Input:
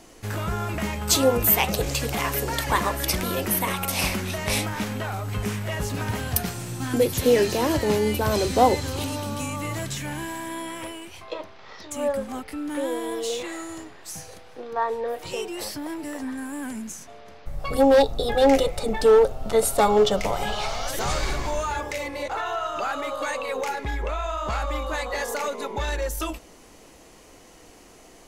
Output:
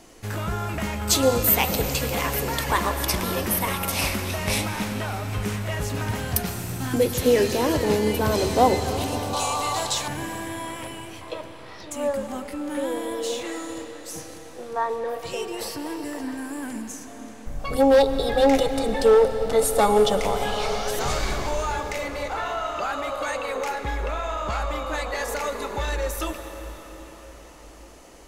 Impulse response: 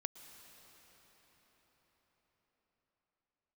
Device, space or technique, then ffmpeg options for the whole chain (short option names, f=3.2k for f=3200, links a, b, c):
cathedral: -filter_complex "[1:a]atrim=start_sample=2205[a];[0:a][a]afir=irnorm=-1:irlink=0,asettb=1/sr,asplit=3[b][c][d];[b]atrim=end=9.334[e];[c]atrim=start=9.33:end=10.08,asetpts=PTS-STARTPTS,afade=t=in:d=0.004:c=qsin,afade=t=out:st=0.746:d=0.004:c=qsin,equalizer=f=125:t=o:w=1:g=-7,equalizer=f=250:t=o:w=1:g=-8,equalizer=f=1k:t=o:w=1:g=11,equalizer=f=2k:t=o:w=1:g=-5,equalizer=f=4k:t=o:w=1:g=11,equalizer=f=8k:t=o:w=1:g=5[f];[d]atrim=start=10.076[g];[e][f]acrossfade=d=0.004:c1=hsin:c2=qsin[h];[h][g]acrossfade=d=0.004:c1=qsin:c2=hsin,volume=2.5dB"